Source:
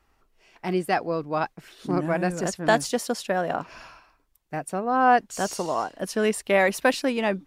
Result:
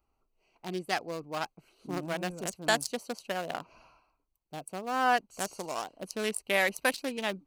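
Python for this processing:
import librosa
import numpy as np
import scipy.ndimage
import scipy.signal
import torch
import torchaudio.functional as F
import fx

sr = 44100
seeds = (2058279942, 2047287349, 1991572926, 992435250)

y = fx.wiener(x, sr, points=25)
y = scipy.signal.lfilter([1.0, -0.9], [1.0], y)
y = F.gain(torch.from_numpy(y), 9.0).numpy()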